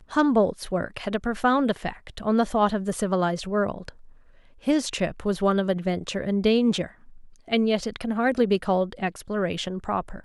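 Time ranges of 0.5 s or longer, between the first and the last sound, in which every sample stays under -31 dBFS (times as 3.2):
3.89–4.67
6.86–7.52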